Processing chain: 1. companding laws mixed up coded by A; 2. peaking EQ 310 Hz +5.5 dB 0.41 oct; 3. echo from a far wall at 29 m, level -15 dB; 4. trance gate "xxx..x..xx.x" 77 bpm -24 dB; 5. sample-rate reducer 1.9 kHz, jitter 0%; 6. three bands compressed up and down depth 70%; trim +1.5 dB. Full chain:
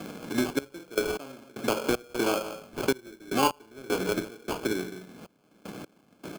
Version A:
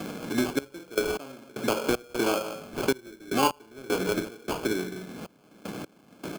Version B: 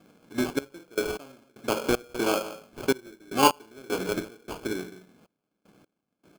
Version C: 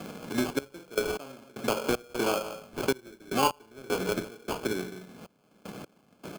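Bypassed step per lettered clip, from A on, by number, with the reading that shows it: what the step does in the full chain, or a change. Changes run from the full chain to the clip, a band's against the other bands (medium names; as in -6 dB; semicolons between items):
1, distortion -23 dB; 6, momentary loudness spread change -2 LU; 2, 250 Hz band -1.5 dB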